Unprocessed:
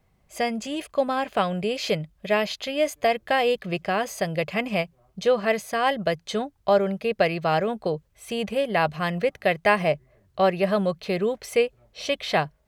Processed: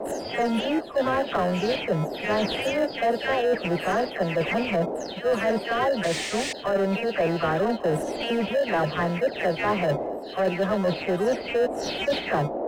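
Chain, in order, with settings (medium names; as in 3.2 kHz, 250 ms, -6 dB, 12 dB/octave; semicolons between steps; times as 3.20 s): delay that grows with frequency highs early, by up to 265 ms; in parallel at -3 dB: sample-and-hold 38×; on the sum: painted sound noise, 6.03–6.53 s, 1.7–9.3 kHz -28 dBFS; band noise 220–700 Hz -42 dBFS; reverse; compression 10:1, threshold -30 dBFS, peak gain reduction 18 dB; reverse; overdrive pedal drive 16 dB, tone 1.2 kHz, clips at -19.5 dBFS; trim +7.5 dB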